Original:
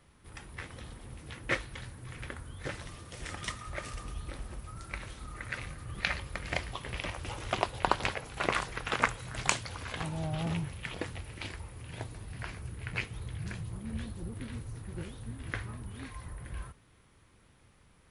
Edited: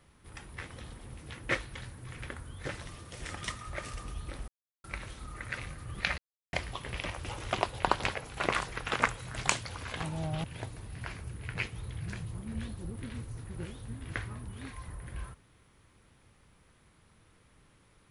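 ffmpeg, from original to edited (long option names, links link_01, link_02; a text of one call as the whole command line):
ffmpeg -i in.wav -filter_complex "[0:a]asplit=6[link_01][link_02][link_03][link_04][link_05][link_06];[link_01]atrim=end=4.48,asetpts=PTS-STARTPTS,afade=type=out:start_time=4.476:duration=0.004:curve=hsin[link_07];[link_02]atrim=start=4.48:end=4.84,asetpts=PTS-STARTPTS,volume=0[link_08];[link_03]atrim=start=4.84:end=6.18,asetpts=PTS-STARTPTS,afade=type=in:duration=0.004:curve=hsin,afade=type=out:start_time=1.336:duration=0.004:curve=hsin[link_09];[link_04]atrim=start=6.18:end=6.53,asetpts=PTS-STARTPTS,volume=0[link_10];[link_05]atrim=start=6.53:end=10.442,asetpts=PTS-STARTPTS,afade=type=in:duration=0.004:curve=hsin[link_11];[link_06]atrim=start=11.818[link_12];[link_07][link_08][link_09][link_10][link_11]concat=n=5:v=0:a=1[link_13];[link_13][link_12]acrossfade=duration=0.004:curve1=hsin:curve2=hsin" out.wav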